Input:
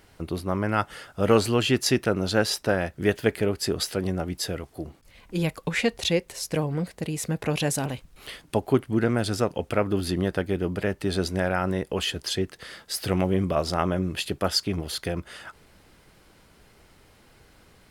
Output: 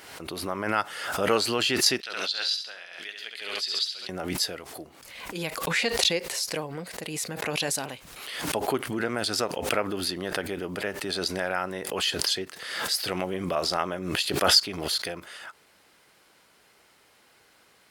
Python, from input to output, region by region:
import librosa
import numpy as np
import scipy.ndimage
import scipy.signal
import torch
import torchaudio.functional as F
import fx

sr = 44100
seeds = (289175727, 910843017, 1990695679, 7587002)

y = fx.chain(x, sr, fx.bandpass_q(hz=3700.0, q=2.3),
    fx.echo_feedback(ms=68, feedback_pct=38, wet_db=-7.0), at=(2.0, 4.09))
y = fx.highpass(y, sr, hz=730.0, slope=6)
y = fx.dynamic_eq(y, sr, hz=4500.0, q=2.8, threshold_db=-45.0, ratio=4.0, max_db=6)
y = fx.pre_swell(y, sr, db_per_s=47.0)